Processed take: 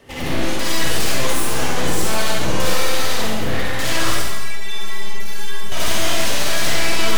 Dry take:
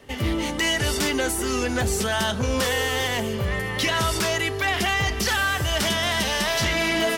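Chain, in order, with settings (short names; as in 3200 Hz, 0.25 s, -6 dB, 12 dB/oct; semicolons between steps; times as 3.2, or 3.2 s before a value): one-sided fold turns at -31 dBFS; 4.16–5.72 metallic resonator 200 Hz, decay 0.22 s, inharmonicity 0.008; reverb RT60 1.1 s, pre-delay 46 ms, DRR -5 dB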